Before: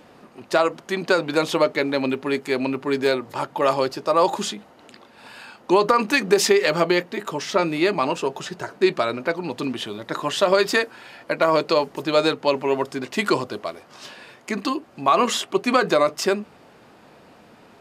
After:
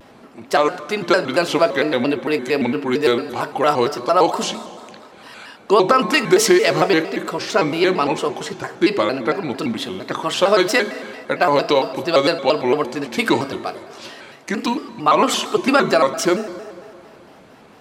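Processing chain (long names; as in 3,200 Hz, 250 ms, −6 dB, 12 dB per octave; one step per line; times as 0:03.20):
on a send at −11 dB: convolution reverb RT60 2.3 s, pre-delay 4 ms
on the sum: pitch modulation by a square or saw wave square 4.4 Hz, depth 160 cents
level +3 dB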